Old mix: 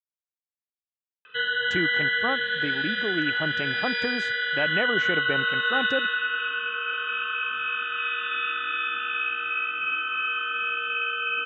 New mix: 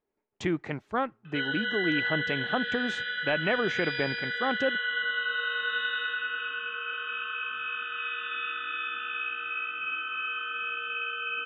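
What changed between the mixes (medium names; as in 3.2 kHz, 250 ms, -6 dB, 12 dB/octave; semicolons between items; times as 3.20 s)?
speech: entry -1.30 s; background -5.5 dB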